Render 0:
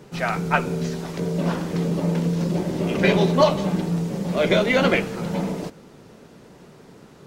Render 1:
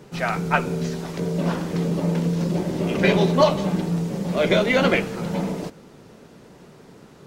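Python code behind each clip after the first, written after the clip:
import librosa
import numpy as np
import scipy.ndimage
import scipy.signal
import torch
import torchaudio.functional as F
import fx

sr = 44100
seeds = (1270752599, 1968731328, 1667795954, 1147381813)

y = x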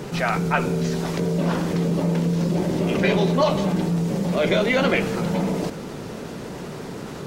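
y = fx.env_flatten(x, sr, amount_pct=50)
y = y * 10.0 ** (-4.0 / 20.0)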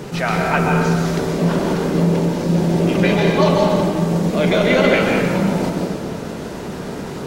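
y = fx.rev_plate(x, sr, seeds[0], rt60_s=1.7, hf_ratio=0.55, predelay_ms=115, drr_db=-0.5)
y = y * 10.0 ** (2.0 / 20.0)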